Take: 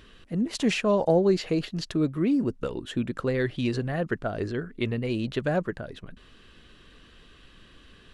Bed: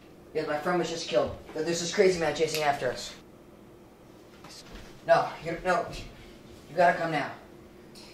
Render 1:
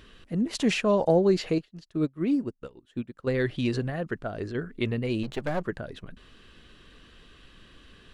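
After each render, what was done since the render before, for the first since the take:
0:01.58–0:03.27: expander for the loud parts 2.5 to 1, over −37 dBFS
0:03.90–0:04.55: clip gain −3.5 dB
0:05.23–0:05.64: gain on one half-wave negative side −12 dB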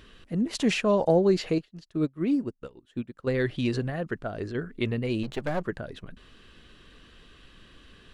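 no processing that can be heard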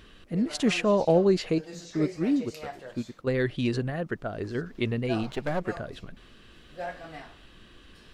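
mix in bed −14 dB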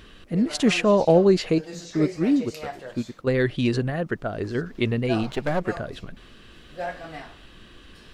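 level +4.5 dB

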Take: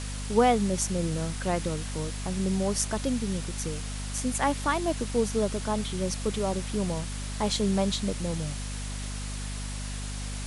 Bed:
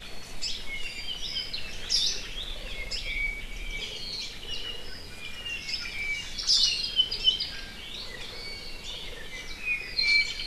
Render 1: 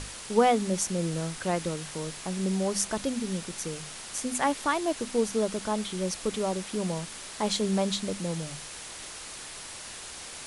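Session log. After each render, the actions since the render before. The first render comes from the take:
mains-hum notches 50/100/150/200/250 Hz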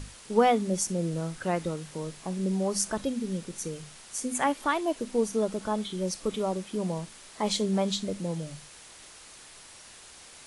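noise reduction from a noise print 8 dB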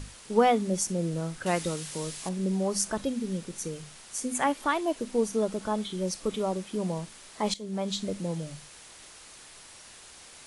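0:01.46–0:02.29: high-shelf EQ 2,300 Hz +11 dB
0:07.54–0:08.05: fade in, from −18 dB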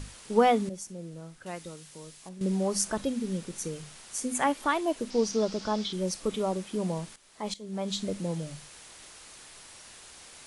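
0:00.69–0:02.41: clip gain −11.5 dB
0:05.10–0:05.93: low-pass with resonance 5,200 Hz, resonance Q 3.7
0:07.16–0:08.00: fade in, from −13.5 dB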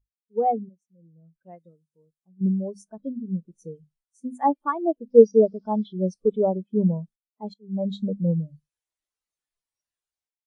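automatic gain control gain up to 15 dB
every bin expanded away from the loudest bin 2.5 to 1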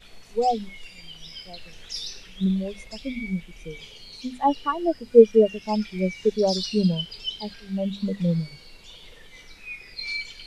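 mix in bed −8 dB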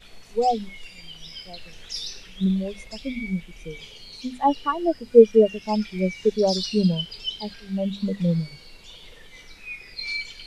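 level +1 dB
brickwall limiter −1 dBFS, peak gain reduction 1 dB

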